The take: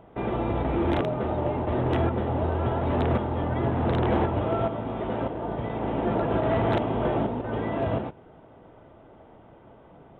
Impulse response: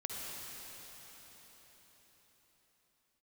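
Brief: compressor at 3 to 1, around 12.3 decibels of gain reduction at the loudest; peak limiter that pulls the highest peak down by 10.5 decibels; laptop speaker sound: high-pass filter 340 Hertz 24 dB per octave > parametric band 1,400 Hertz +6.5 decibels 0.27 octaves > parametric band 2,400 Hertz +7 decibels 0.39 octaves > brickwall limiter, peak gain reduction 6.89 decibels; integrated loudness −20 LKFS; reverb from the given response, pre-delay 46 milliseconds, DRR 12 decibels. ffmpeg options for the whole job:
-filter_complex "[0:a]acompressor=threshold=-38dB:ratio=3,alimiter=level_in=12.5dB:limit=-24dB:level=0:latency=1,volume=-12.5dB,asplit=2[link_01][link_02];[1:a]atrim=start_sample=2205,adelay=46[link_03];[link_02][link_03]afir=irnorm=-1:irlink=0,volume=-14dB[link_04];[link_01][link_04]amix=inputs=2:normalize=0,highpass=frequency=340:width=0.5412,highpass=frequency=340:width=1.3066,equalizer=frequency=1400:width_type=o:width=0.27:gain=6.5,equalizer=frequency=2400:width_type=o:width=0.39:gain=7,volume=28.5dB,alimiter=limit=-11dB:level=0:latency=1"

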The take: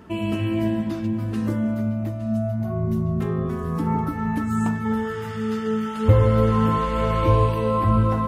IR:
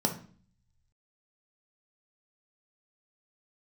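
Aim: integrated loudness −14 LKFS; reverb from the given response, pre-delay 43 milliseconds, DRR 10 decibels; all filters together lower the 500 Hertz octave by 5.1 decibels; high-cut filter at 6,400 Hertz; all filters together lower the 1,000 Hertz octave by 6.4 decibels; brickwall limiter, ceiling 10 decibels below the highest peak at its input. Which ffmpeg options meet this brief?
-filter_complex "[0:a]lowpass=6400,equalizer=frequency=500:width_type=o:gain=-4.5,equalizer=frequency=1000:width_type=o:gain=-6.5,alimiter=limit=-15.5dB:level=0:latency=1,asplit=2[link_01][link_02];[1:a]atrim=start_sample=2205,adelay=43[link_03];[link_02][link_03]afir=irnorm=-1:irlink=0,volume=-18dB[link_04];[link_01][link_04]amix=inputs=2:normalize=0,volume=9dB"

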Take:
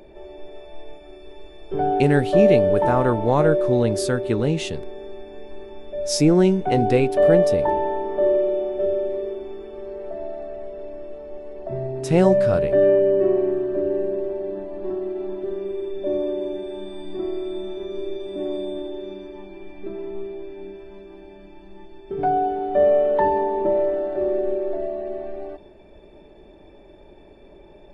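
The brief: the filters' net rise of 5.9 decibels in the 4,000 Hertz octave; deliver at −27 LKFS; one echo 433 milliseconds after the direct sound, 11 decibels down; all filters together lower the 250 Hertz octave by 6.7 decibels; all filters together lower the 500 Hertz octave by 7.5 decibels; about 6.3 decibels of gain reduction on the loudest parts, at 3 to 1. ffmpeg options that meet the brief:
ffmpeg -i in.wav -af "equalizer=frequency=250:width_type=o:gain=-7,equalizer=frequency=500:width_type=o:gain=-8,equalizer=frequency=4000:width_type=o:gain=8,acompressor=threshold=-25dB:ratio=3,aecho=1:1:433:0.282,volume=4dB" out.wav

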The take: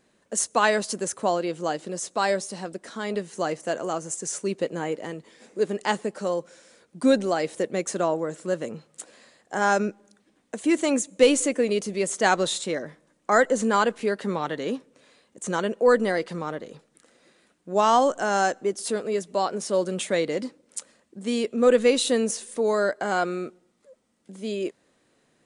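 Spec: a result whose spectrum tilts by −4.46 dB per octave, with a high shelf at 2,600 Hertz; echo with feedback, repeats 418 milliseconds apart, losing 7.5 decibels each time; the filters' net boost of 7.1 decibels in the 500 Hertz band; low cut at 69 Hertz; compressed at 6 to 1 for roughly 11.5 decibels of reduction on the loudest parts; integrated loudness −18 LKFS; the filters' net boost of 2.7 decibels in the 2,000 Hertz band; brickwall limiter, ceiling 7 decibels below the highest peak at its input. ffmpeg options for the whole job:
ffmpeg -i in.wav -af "highpass=69,equalizer=frequency=500:width_type=o:gain=8,equalizer=frequency=2000:width_type=o:gain=5,highshelf=frequency=2600:gain=-5,acompressor=threshold=-17dB:ratio=6,alimiter=limit=-14dB:level=0:latency=1,aecho=1:1:418|836|1254|1672|2090:0.422|0.177|0.0744|0.0312|0.0131,volume=7dB" out.wav

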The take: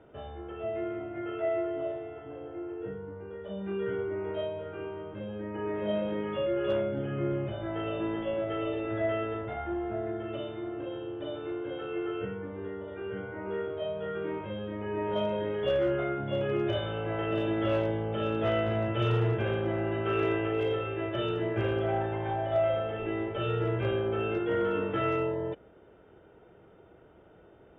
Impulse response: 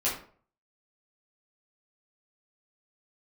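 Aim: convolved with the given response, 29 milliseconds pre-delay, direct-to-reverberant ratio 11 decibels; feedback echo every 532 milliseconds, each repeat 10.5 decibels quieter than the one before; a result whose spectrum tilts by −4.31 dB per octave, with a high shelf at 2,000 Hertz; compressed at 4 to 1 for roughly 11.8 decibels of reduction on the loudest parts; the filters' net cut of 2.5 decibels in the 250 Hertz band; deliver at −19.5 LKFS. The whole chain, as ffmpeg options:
-filter_complex "[0:a]equalizer=frequency=250:width_type=o:gain=-4.5,highshelf=frequency=2000:gain=8,acompressor=threshold=-38dB:ratio=4,aecho=1:1:532|1064|1596:0.299|0.0896|0.0269,asplit=2[link_01][link_02];[1:a]atrim=start_sample=2205,adelay=29[link_03];[link_02][link_03]afir=irnorm=-1:irlink=0,volume=-19.5dB[link_04];[link_01][link_04]amix=inputs=2:normalize=0,volume=20dB"

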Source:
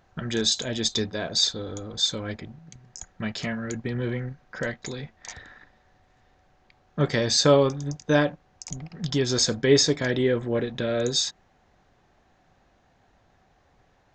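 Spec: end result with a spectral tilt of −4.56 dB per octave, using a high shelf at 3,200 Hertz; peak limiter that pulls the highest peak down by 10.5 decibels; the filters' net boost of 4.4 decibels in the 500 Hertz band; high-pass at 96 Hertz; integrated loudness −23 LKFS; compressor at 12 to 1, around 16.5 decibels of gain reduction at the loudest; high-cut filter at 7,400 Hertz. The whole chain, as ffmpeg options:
ffmpeg -i in.wav -af "highpass=96,lowpass=7400,equalizer=frequency=500:width_type=o:gain=5.5,highshelf=frequency=3200:gain=-6,acompressor=threshold=-26dB:ratio=12,volume=11.5dB,alimiter=limit=-12dB:level=0:latency=1" out.wav

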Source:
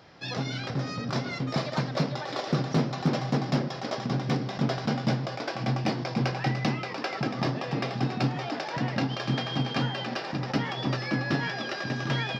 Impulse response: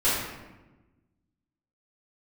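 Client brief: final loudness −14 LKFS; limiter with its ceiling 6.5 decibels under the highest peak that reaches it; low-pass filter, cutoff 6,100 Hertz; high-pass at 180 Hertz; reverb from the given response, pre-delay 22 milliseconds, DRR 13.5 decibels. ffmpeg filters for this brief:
-filter_complex "[0:a]highpass=180,lowpass=6100,alimiter=limit=-20.5dB:level=0:latency=1,asplit=2[link_01][link_02];[1:a]atrim=start_sample=2205,adelay=22[link_03];[link_02][link_03]afir=irnorm=-1:irlink=0,volume=-27.5dB[link_04];[link_01][link_04]amix=inputs=2:normalize=0,volume=18dB"

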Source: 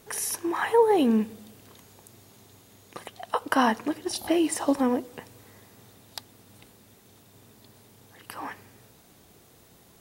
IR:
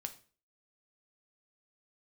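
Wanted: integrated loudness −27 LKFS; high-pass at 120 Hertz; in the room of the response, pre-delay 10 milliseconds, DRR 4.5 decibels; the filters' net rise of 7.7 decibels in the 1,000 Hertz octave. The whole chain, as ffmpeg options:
-filter_complex "[0:a]highpass=120,equalizer=frequency=1000:width_type=o:gain=9,asplit=2[link_01][link_02];[1:a]atrim=start_sample=2205,adelay=10[link_03];[link_02][link_03]afir=irnorm=-1:irlink=0,volume=-2dB[link_04];[link_01][link_04]amix=inputs=2:normalize=0,volume=-5.5dB"

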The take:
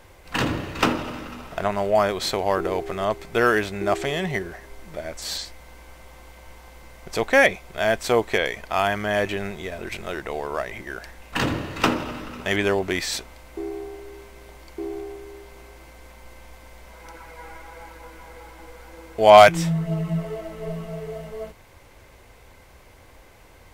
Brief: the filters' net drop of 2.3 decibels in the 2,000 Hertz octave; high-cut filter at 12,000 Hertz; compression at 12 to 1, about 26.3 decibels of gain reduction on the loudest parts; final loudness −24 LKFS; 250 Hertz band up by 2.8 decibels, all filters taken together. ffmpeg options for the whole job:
ffmpeg -i in.wav -af "lowpass=12000,equalizer=frequency=250:width_type=o:gain=4,equalizer=frequency=2000:width_type=o:gain=-3,acompressor=threshold=-33dB:ratio=12,volume=15dB" out.wav

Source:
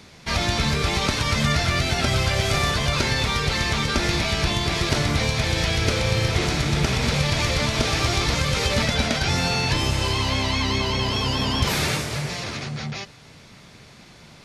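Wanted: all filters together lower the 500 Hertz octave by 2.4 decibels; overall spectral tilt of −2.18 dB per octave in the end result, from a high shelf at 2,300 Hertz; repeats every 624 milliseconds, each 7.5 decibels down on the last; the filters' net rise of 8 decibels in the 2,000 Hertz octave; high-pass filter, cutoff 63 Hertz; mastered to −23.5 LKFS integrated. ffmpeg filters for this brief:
ffmpeg -i in.wav -af "highpass=63,equalizer=frequency=500:width_type=o:gain=-4,equalizer=frequency=2000:width_type=o:gain=5.5,highshelf=frequency=2300:gain=8,aecho=1:1:624|1248|1872|2496|3120:0.422|0.177|0.0744|0.0312|0.0131,volume=-7.5dB" out.wav

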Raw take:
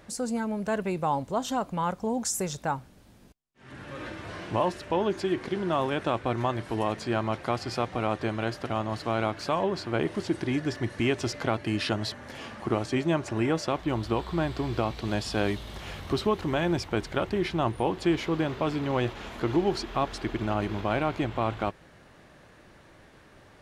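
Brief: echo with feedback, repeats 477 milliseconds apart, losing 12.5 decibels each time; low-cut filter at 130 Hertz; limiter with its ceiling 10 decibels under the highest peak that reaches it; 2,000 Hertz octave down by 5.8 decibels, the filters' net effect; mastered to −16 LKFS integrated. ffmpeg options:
ffmpeg -i in.wav -af "highpass=130,equalizer=frequency=2000:width_type=o:gain=-8,alimiter=limit=-22.5dB:level=0:latency=1,aecho=1:1:477|954|1431:0.237|0.0569|0.0137,volume=18dB" out.wav

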